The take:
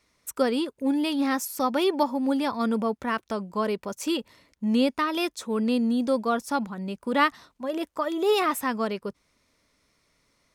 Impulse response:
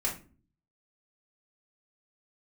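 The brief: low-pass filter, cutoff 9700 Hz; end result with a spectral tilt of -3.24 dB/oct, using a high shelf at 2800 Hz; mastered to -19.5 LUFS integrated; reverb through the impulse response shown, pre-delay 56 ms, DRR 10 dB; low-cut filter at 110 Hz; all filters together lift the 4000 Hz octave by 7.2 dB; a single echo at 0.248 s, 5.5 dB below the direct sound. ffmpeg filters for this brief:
-filter_complex "[0:a]highpass=110,lowpass=9.7k,highshelf=f=2.8k:g=5,equalizer=f=4k:t=o:g=5.5,aecho=1:1:248:0.531,asplit=2[a][b];[1:a]atrim=start_sample=2205,adelay=56[c];[b][c]afir=irnorm=-1:irlink=0,volume=-15.5dB[d];[a][d]amix=inputs=2:normalize=0,volume=4.5dB"

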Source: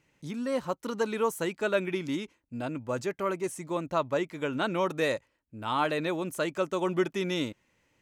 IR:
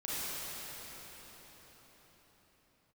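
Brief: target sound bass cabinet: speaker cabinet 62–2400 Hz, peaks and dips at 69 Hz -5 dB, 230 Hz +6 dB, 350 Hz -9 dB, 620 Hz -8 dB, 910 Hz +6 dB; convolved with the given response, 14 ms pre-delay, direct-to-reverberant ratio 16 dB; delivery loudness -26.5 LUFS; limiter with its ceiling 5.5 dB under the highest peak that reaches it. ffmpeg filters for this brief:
-filter_complex "[0:a]alimiter=limit=-20.5dB:level=0:latency=1,asplit=2[a][b];[1:a]atrim=start_sample=2205,adelay=14[c];[b][c]afir=irnorm=-1:irlink=0,volume=-21.5dB[d];[a][d]amix=inputs=2:normalize=0,highpass=f=62:w=0.5412,highpass=f=62:w=1.3066,equalizer=f=69:t=q:w=4:g=-5,equalizer=f=230:t=q:w=4:g=6,equalizer=f=350:t=q:w=4:g=-9,equalizer=f=620:t=q:w=4:g=-8,equalizer=f=910:t=q:w=4:g=6,lowpass=f=2.4k:w=0.5412,lowpass=f=2.4k:w=1.3066,volume=7dB"

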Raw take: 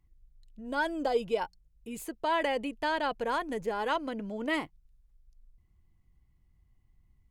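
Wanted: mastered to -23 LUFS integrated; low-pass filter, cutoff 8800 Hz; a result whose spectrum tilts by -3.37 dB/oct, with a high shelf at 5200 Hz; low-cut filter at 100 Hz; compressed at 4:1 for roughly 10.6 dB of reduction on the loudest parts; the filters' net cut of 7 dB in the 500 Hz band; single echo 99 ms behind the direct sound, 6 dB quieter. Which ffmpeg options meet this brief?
-af "highpass=100,lowpass=8.8k,equalizer=f=500:t=o:g=-8.5,highshelf=f=5.2k:g=6,acompressor=threshold=-40dB:ratio=4,aecho=1:1:99:0.501,volume=19dB"

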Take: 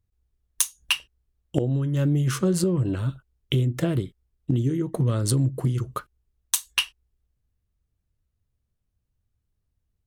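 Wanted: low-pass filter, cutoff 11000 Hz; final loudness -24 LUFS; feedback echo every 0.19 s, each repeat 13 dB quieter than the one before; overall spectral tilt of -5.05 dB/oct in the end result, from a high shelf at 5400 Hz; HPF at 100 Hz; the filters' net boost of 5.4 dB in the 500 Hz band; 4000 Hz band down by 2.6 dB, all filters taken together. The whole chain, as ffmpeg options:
-af "highpass=100,lowpass=11k,equalizer=f=500:t=o:g=7.5,equalizer=f=4k:t=o:g=-7.5,highshelf=f=5.4k:g=7.5,aecho=1:1:190|380|570:0.224|0.0493|0.0108"

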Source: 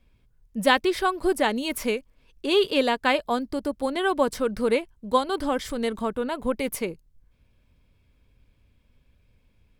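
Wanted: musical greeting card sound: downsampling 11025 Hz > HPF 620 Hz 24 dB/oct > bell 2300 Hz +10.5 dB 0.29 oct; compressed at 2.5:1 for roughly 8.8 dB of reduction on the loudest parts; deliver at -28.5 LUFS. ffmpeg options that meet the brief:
-af "acompressor=threshold=-28dB:ratio=2.5,aresample=11025,aresample=44100,highpass=f=620:w=0.5412,highpass=f=620:w=1.3066,equalizer=f=2.3k:t=o:w=0.29:g=10.5,volume=4.5dB"

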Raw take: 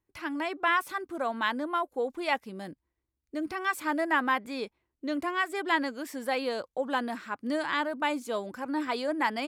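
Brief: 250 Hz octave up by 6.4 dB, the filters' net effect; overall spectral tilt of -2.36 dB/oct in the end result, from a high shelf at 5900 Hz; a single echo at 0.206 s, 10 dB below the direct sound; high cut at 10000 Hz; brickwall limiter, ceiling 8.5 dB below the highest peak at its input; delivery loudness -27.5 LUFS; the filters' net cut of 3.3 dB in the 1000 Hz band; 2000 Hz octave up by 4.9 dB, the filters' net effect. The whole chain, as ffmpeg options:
-af "lowpass=10k,equalizer=f=250:t=o:g=8,equalizer=f=1k:t=o:g=-6.5,equalizer=f=2k:t=o:g=8.5,highshelf=f=5.9k:g=-6.5,alimiter=limit=-20dB:level=0:latency=1,aecho=1:1:206:0.316,volume=2dB"

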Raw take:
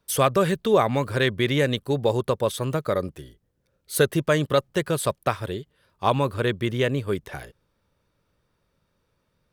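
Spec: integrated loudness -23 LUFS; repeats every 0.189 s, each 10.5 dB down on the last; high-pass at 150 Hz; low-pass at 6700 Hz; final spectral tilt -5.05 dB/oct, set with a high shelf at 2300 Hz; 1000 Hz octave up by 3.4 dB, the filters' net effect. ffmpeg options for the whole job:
-af "highpass=150,lowpass=6.7k,equalizer=f=1k:t=o:g=6,highshelf=f=2.3k:g=-8.5,aecho=1:1:189|378|567:0.299|0.0896|0.0269,volume=0.5dB"

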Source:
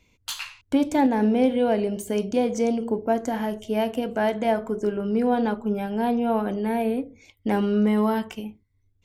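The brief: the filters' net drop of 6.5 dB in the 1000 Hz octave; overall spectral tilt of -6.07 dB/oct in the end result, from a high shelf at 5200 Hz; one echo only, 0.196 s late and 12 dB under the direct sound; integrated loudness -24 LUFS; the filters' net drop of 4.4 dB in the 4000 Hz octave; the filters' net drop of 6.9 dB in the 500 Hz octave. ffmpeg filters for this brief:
-af "equalizer=f=500:t=o:g=-7,equalizer=f=1k:t=o:g=-5.5,equalizer=f=4k:t=o:g=-7,highshelf=f=5.2k:g=3,aecho=1:1:196:0.251,volume=3dB"

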